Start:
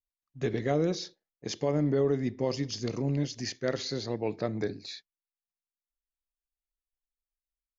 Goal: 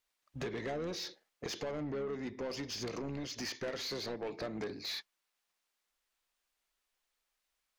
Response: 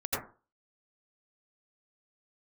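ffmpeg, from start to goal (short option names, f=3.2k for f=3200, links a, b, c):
-filter_complex "[0:a]acompressor=threshold=-41dB:ratio=10,asplit=2[a][b];[b]highpass=f=720:p=1,volume=20dB,asoftclip=type=tanh:threshold=-33dB[c];[a][c]amix=inputs=2:normalize=0,lowpass=f=4.2k:p=1,volume=-6dB,asplit=2[d][e];[e]asetrate=22050,aresample=44100,atempo=2,volume=-15dB[f];[d][f]amix=inputs=2:normalize=0,volume=2.5dB"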